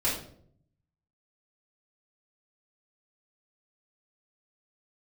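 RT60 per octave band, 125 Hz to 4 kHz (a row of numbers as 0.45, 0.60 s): 1.2, 0.85, 0.70, 0.50, 0.45, 0.40 s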